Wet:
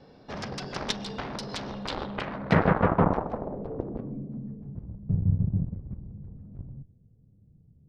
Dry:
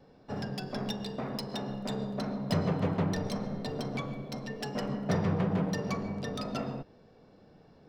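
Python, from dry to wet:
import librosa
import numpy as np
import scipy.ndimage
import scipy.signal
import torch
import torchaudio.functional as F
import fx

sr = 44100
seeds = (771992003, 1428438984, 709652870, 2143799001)

y = fx.cheby_harmonics(x, sr, harmonics=(3, 7), levels_db=(-20, -14), full_scale_db=-18.0)
y = fx.filter_sweep_lowpass(y, sr, from_hz=4900.0, to_hz=110.0, start_s=1.76, end_s=4.97, q=1.5)
y = y * 10.0 ** (8.0 / 20.0)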